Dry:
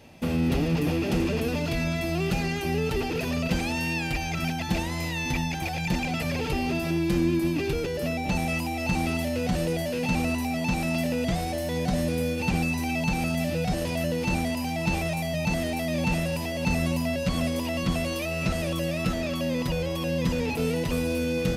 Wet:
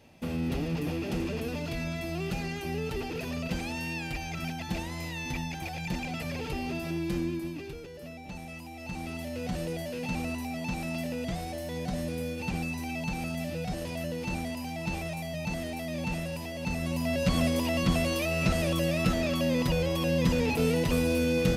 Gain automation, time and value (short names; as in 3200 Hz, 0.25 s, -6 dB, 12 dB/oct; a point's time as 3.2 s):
7.15 s -6.5 dB
7.82 s -15 dB
8.56 s -15 dB
9.48 s -7 dB
16.8 s -7 dB
17.23 s +0.5 dB